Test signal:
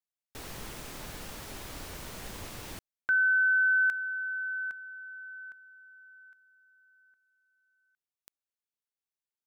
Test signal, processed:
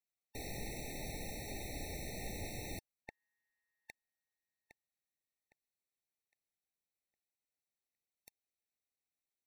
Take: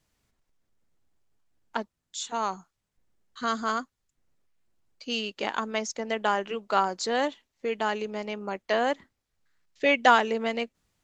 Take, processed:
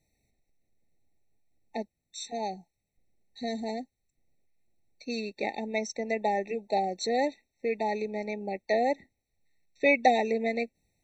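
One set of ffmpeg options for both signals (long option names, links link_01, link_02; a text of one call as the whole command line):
ffmpeg -i in.wav -af "afftfilt=real='re*eq(mod(floor(b*sr/1024/900),2),0)':imag='im*eq(mod(floor(b*sr/1024/900),2),0)':win_size=1024:overlap=0.75" out.wav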